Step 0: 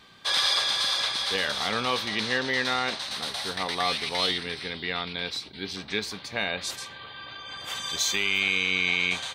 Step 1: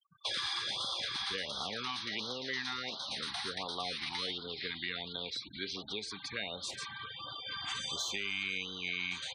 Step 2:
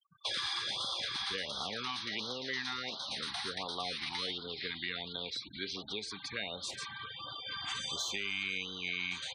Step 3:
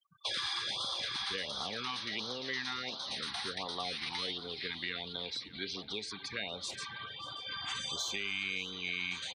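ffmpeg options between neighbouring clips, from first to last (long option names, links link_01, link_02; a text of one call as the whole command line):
ffmpeg -i in.wav -filter_complex "[0:a]afftfilt=real='re*gte(hypot(re,im),0.01)':imag='im*gte(hypot(re,im),0.01)':win_size=1024:overlap=0.75,acrossover=split=340|3100[link_01][link_02][link_03];[link_01]acompressor=threshold=-51dB:ratio=4[link_04];[link_02]acompressor=threshold=-39dB:ratio=4[link_05];[link_03]acompressor=threshold=-42dB:ratio=4[link_06];[link_04][link_05][link_06]amix=inputs=3:normalize=0,afftfilt=real='re*(1-between(b*sr/1024,480*pow(2200/480,0.5+0.5*sin(2*PI*1.4*pts/sr))/1.41,480*pow(2200/480,0.5+0.5*sin(2*PI*1.4*pts/sr))*1.41))':imag='im*(1-between(b*sr/1024,480*pow(2200/480,0.5+0.5*sin(2*PI*1.4*pts/sr))/1.41,480*pow(2200/480,0.5+0.5*sin(2*PI*1.4*pts/sr))*1.41))':win_size=1024:overlap=0.75" out.wav
ffmpeg -i in.wav -af anull out.wav
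ffmpeg -i in.wav -af "aecho=1:1:585|1170|1755|2340:0.112|0.0572|0.0292|0.0149" out.wav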